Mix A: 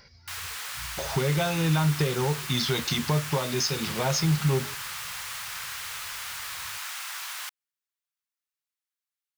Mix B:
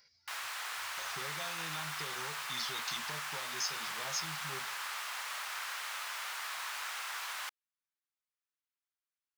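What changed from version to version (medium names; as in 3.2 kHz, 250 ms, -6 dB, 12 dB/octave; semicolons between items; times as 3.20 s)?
speech: add differentiator; master: add tilt EQ -2.5 dB/octave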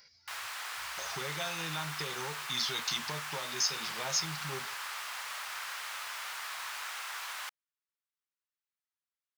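speech +8.0 dB; reverb: off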